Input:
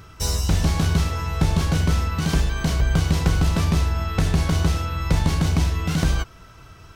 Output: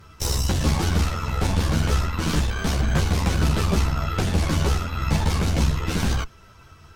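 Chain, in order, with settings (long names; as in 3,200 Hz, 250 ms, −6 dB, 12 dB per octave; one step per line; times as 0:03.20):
harmonic generator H 8 −14 dB, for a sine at −5.5 dBFS
string-ensemble chorus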